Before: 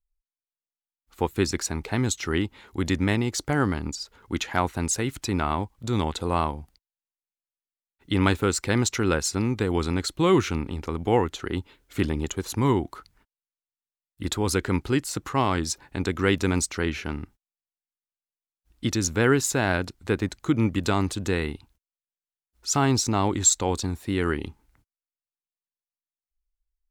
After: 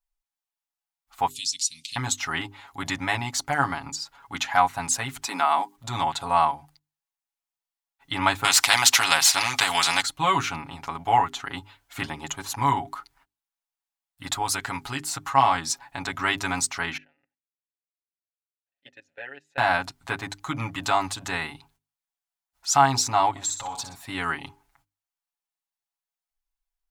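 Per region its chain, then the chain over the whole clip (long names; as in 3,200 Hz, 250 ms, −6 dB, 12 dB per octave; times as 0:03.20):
0:01.30–0:01.96: meter weighting curve ITU-R 468 + downward compressor 2 to 1, threshold −29 dBFS + elliptic band-stop filter 240–3,100 Hz
0:05.26–0:05.76: Butterworth high-pass 200 Hz + high-shelf EQ 4,200 Hz +7.5 dB
0:08.44–0:10.02: meter weighting curve D + every bin compressed towards the loudest bin 2 to 1
0:14.42–0:15.01: high-shelf EQ 3,800 Hz +5 dB + downward compressor 1.5 to 1, threshold −27 dBFS
0:16.97–0:19.58: output level in coarse steps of 23 dB + formant filter e
0:23.30–0:23.95: downward compressor 5 to 1, threshold −28 dBFS + repeating echo 61 ms, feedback 38%, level −9 dB + saturating transformer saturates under 350 Hz
whole clip: low shelf with overshoot 590 Hz −9 dB, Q 3; mains-hum notches 50/100/150/200/250/300/350/400 Hz; comb filter 7.2 ms, depth 82%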